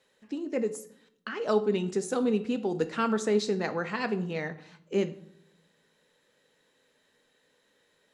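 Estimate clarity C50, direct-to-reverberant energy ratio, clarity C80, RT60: 15.0 dB, 9.5 dB, 19.0 dB, 0.70 s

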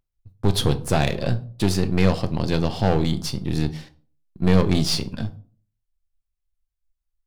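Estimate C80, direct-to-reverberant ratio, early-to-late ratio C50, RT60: 22.0 dB, 9.0 dB, 16.5 dB, 0.45 s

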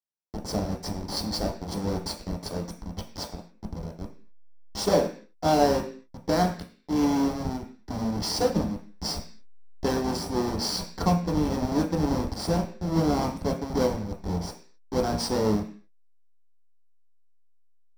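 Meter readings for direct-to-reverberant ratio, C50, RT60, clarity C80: 1.5 dB, 10.0 dB, 0.45 s, 15.0 dB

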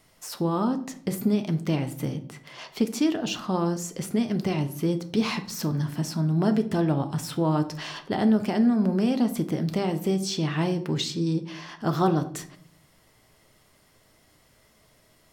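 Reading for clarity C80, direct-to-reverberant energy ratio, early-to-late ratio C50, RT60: 18.0 dB, 7.0 dB, 13.5 dB, 0.55 s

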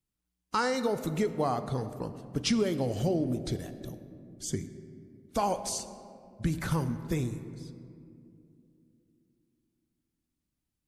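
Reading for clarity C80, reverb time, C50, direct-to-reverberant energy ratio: 12.5 dB, 2.6 s, 11.5 dB, 10.0 dB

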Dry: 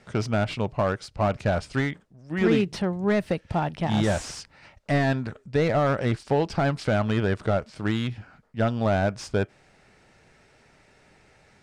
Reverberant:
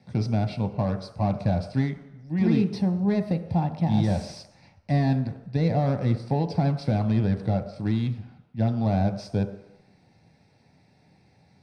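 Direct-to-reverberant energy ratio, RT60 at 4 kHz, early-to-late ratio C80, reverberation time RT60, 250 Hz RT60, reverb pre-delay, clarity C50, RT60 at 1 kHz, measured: 6.5 dB, 0.90 s, 12.5 dB, 0.90 s, 0.75 s, 3 ms, 11.0 dB, 0.95 s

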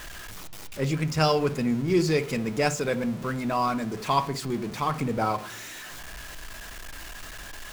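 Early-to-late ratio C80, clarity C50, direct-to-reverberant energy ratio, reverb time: 21.5 dB, 16.5 dB, 11.0 dB, 0.45 s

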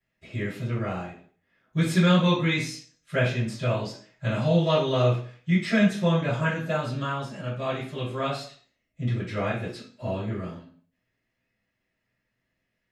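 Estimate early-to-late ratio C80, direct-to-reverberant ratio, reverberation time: 10.5 dB, -14.0 dB, 0.50 s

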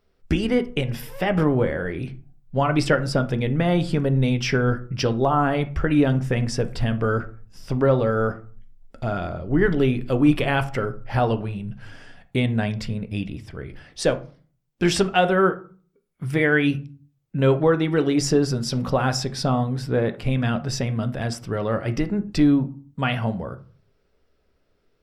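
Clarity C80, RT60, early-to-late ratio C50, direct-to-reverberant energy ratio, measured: 21.5 dB, 0.40 s, 16.5 dB, 8.5 dB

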